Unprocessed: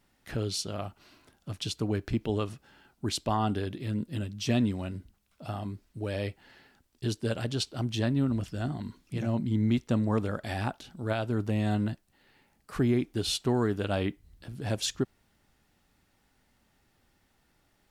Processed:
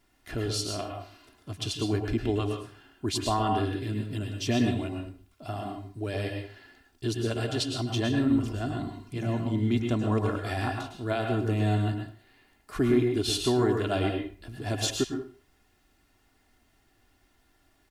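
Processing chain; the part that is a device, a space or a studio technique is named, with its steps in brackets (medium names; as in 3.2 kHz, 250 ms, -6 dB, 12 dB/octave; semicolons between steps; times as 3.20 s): microphone above a desk (comb 2.9 ms, depth 55%; reverberation RT60 0.45 s, pre-delay 100 ms, DRR 2.5 dB)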